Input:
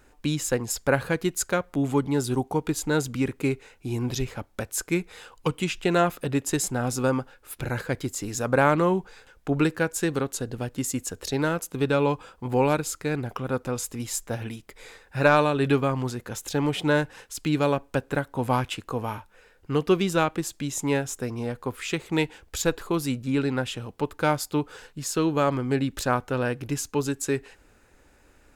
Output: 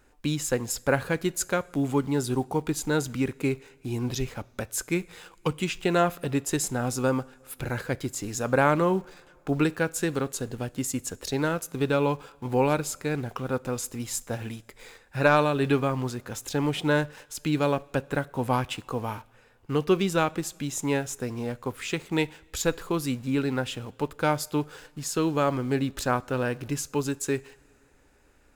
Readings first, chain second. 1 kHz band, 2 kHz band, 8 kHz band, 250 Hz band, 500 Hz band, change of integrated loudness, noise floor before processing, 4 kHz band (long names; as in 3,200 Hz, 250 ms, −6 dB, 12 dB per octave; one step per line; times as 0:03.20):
−1.5 dB, −1.5 dB, −1.5 dB, −1.5 dB, −1.5 dB, −1.5 dB, −59 dBFS, −1.5 dB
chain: in parallel at −9 dB: bit reduction 7 bits
on the sum: coupled-rooms reverb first 0.53 s, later 2.6 s, from −15 dB, DRR 19.5 dB
level −4 dB